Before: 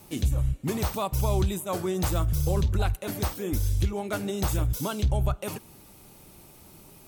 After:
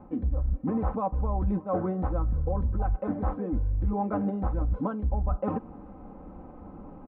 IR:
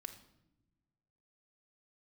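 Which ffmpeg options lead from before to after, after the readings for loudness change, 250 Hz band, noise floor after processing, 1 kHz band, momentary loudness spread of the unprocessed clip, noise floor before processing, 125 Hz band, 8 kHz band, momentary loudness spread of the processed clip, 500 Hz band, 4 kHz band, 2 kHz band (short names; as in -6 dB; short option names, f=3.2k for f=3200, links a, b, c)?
-1.5 dB, +2.0 dB, -47 dBFS, +1.0 dB, 5 LU, -52 dBFS, -3.5 dB, under -40 dB, 18 LU, -1.5 dB, under -30 dB, -10.0 dB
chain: -af "lowpass=f=1.2k:w=0.5412,lowpass=f=1.2k:w=1.3066,aecho=1:1:3.9:0.77,areverse,acompressor=threshold=-33dB:ratio=5,areverse,volume=8dB"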